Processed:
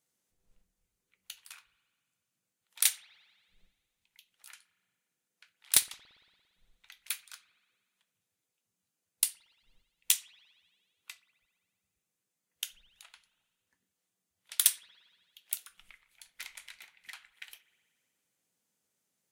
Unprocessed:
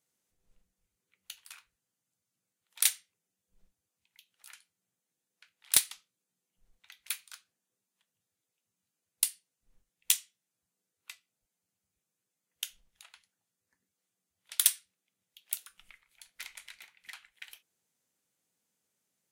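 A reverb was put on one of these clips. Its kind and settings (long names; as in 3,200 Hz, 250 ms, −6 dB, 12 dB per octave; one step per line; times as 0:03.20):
spring reverb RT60 1.8 s, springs 57 ms, chirp 40 ms, DRR 17.5 dB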